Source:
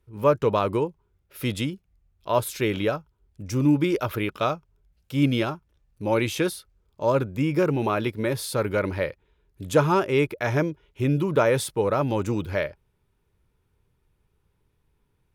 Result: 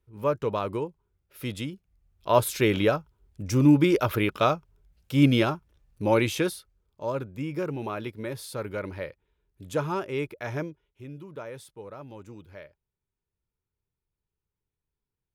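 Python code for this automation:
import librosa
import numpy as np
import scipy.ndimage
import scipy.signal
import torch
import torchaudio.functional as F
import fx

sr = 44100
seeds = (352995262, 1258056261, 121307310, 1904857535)

y = fx.gain(x, sr, db=fx.line((1.67, -6.0), (2.32, 2.0), (6.03, 2.0), (7.14, -8.5), (10.63, -8.5), (11.04, -19.0)))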